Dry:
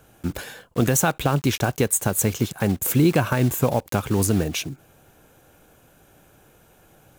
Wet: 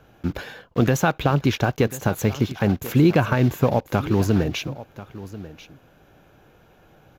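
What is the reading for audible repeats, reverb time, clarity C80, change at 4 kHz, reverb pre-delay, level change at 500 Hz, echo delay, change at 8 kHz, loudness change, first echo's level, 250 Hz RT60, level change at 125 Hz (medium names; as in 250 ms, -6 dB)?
1, no reverb, no reverb, -1.0 dB, no reverb, +1.5 dB, 1039 ms, -11.5 dB, +0.5 dB, -16.5 dB, no reverb, +1.5 dB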